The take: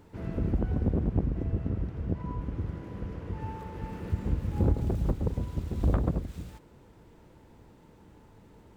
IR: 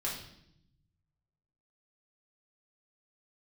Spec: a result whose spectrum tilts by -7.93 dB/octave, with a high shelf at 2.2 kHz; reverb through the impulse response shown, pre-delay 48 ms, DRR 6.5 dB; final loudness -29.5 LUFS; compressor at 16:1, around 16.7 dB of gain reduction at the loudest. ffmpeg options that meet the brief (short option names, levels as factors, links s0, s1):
-filter_complex "[0:a]highshelf=f=2200:g=4.5,acompressor=threshold=0.0141:ratio=16,asplit=2[s0][s1];[1:a]atrim=start_sample=2205,adelay=48[s2];[s1][s2]afir=irnorm=-1:irlink=0,volume=0.316[s3];[s0][s3]amix=inputs=2:normalize=0,volume=4.47"